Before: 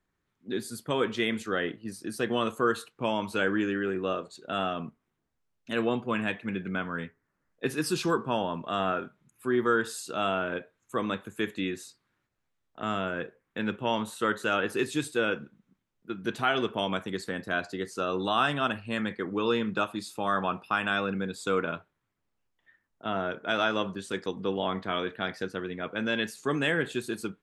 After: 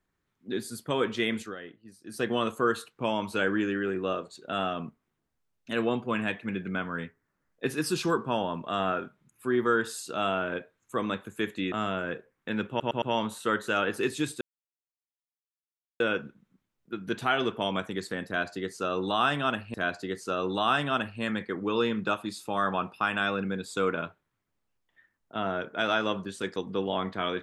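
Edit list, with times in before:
1.41–2.19 dip -13 dB, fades 0.14 s
11.72–12.81 cut
13.78 stutter 0.11 s, 4 plays
15.17 insert silence 1.59 s
17.44–18.91 loop, 2 plays

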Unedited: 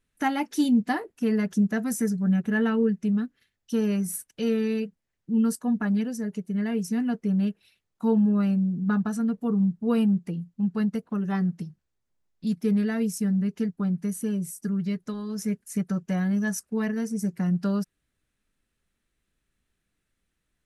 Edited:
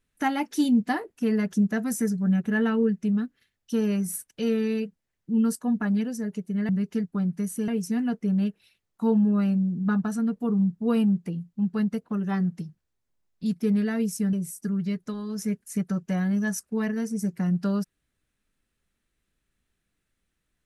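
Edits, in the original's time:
13.34–14.33 move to 6.69

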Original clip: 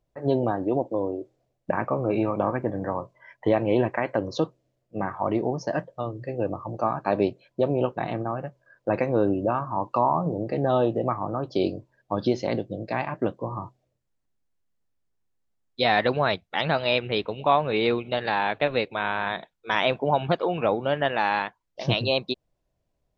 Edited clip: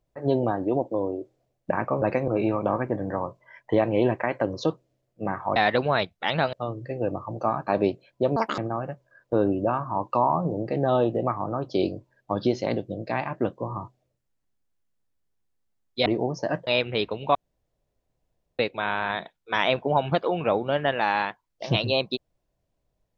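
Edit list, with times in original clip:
5.3–5.91 swap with 15.87–16.84
7.74–8.13 speed 178%
8.88–9.14 move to 2.02
17.52–18.76 room tone

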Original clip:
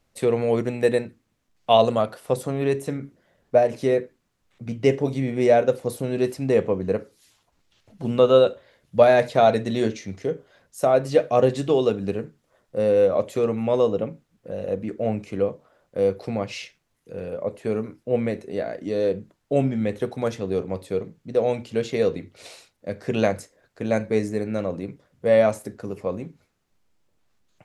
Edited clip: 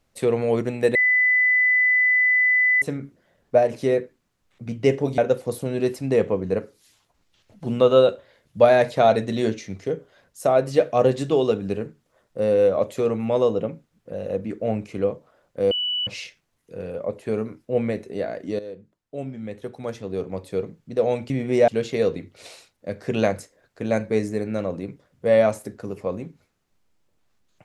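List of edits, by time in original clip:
0.95–2.82 bleep 2000 Hz -15 dBFS
5.18–5.56 move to 21.68
16.09–16.45 bleep 2960 Hz -22 dBFS
18.97–20.98 fade in quadratic, from -14 dB

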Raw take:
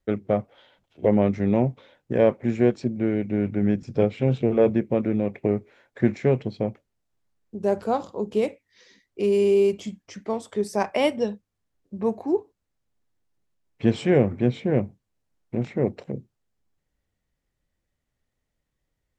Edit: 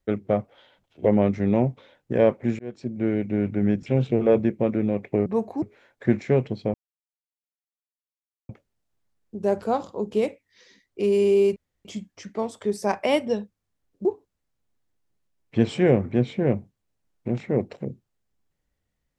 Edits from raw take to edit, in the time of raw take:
2.59–3.07 fade in
3.86–4.17 cut
6.69 insert silence 1.75 s
9.76 insert room tone 0.29 s
11.96–12.32 move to 5.57

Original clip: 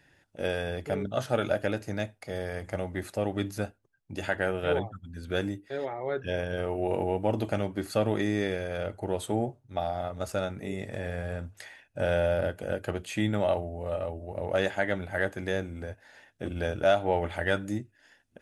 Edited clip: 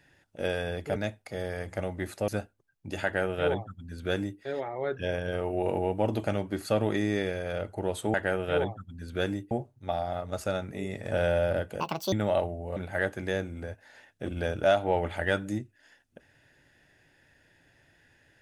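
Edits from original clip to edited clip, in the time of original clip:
0.96–1.92 cut
3.24–3.53 cut
4.29–5.66 copy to 9.39
10.99–11.99 cut
12.68–13.26 speed 179%
13.9–14.96 cut

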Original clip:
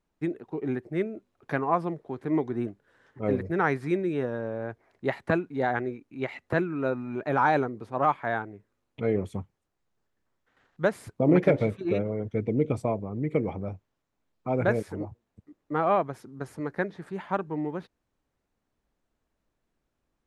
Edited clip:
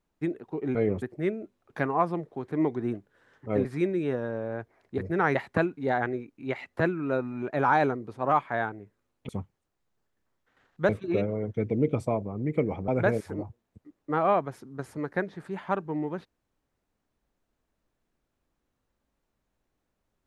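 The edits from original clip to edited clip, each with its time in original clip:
3.38–3.75 move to 5.08
9.02–9.29 move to 0.75
10.89–11.66 cut
13.65–14.5 cut

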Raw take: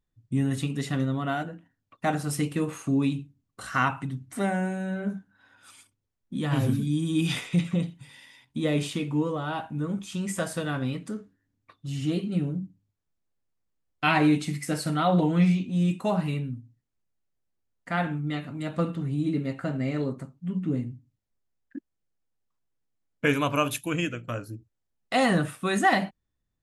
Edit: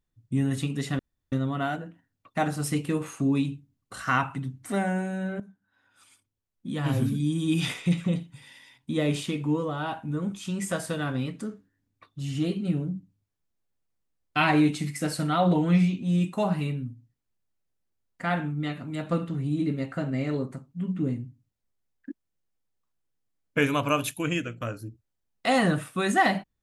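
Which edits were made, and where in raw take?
0.99 insert room tone 0.33 s
5.07–6.84 fade in, from -16 dB

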